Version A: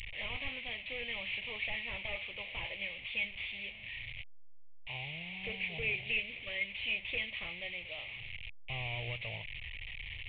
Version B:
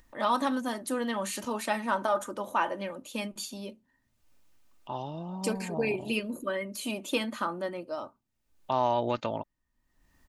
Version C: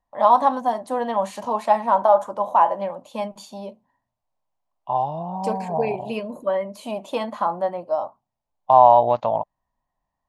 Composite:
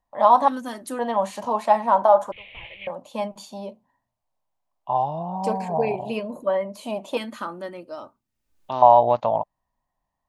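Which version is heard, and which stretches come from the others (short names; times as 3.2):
C
0.48–0.99 from B
2.32–2.87 from A
7.17–8.82 from B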